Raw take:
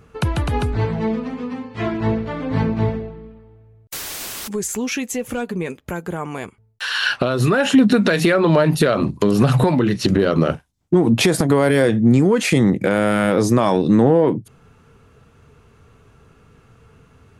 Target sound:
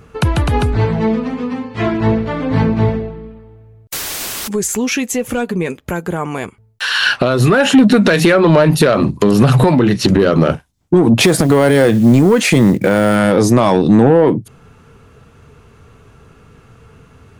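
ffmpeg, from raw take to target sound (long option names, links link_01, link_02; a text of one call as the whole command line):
ffmpeg -i in.wav -filter_complex "[0:a]asettb=1/sr,asplit=3[link_01][link_02][link_03];[link_01]atrim=end=11.234[link_04];[link_02]atrim=start=11.23:end=13.16,asetpts=PTS-STARTPTS,afade=type=in:duration=0.004:curve=qsin,afade=type=out:start_time=1.926:duration=0.004:curve=qsin,acrusher=bits=7:mode=log:mix=0:aa=0.000001[link_05];[link_03]atrim=start=13.156[link_06];[link_04][link_05]acrossfade=duration=0.004:curve1=hsin:curve2=qsin[link_07];[link_07][link_06]acrossfade=duration=0.004:curve1=qsin:curve2=hsin,acontrast=64" out.wav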